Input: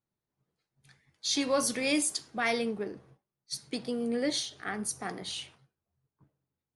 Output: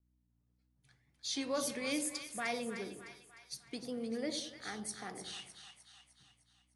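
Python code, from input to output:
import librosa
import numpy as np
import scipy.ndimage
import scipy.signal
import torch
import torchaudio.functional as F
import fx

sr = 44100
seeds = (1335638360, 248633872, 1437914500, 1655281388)

y = fx.add_hum(x, sr, base_hz=60, snr_db=33)
y = fx.wow_flutter(y, sr, seeds[0], rate_hz=2.1, depth_cents=60.0)
y = fx.echo_split(y, sr, split_hz=860.0, low_ms=93, high_ms=304, feedback_pct=52, wet_db=-9.0)
y = y * 10.0 ** (-8.5 / 20.0)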